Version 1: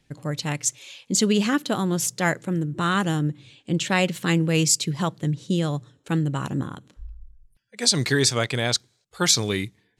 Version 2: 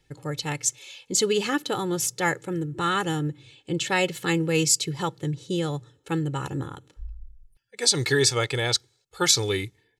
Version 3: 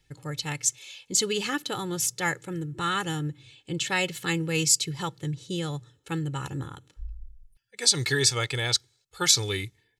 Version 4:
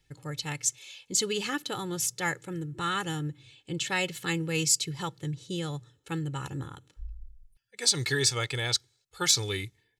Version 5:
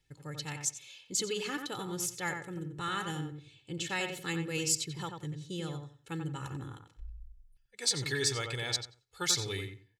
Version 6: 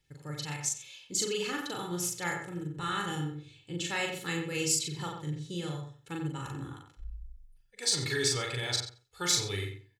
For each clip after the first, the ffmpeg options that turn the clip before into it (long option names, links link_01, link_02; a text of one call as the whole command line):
ffmpeg -i in.wav -af "aecho=1:1:2.3:0.68,volume=-2.5dB" out.wav
ffmpeg -i in.wav -af "equalizer=frequency=470:width=0.49:gain=-6.5" out.wav
ffmpeg -i in.wav -af "asoftclip=type=tanh:threshold=-6.5dB,volume=-2.5dB" out.wav
ffmpeg -i in.wav -filter_complex "[0:a]asplit=2[link_01][link_02];[link_02]adelay=90,lowpass=frequency=2200:poles=1,volume=-5dB,asplit=2[link_03][link_04];[link_04]adelay=90,lowpass=frequency=2200:poles=1,volume=0.23,asplit=2[link_05][link_06];[link_06]adelay=90,lowpass=frequency=2200:poles=1,volume=0.23[link_07];[link_01][link_03][link_05][link_07]amix=inputs=4:normalize=0,volume=-5.5dB" out.wav
ffmpeg -i in.wav -filter_complex "[0:a]asplit=2[link_01][link_02];[link_02]adelay=40,volume=-2.5dB[link_03];[link_01][link_03]amix=inputs=2:normalize=0" out.wav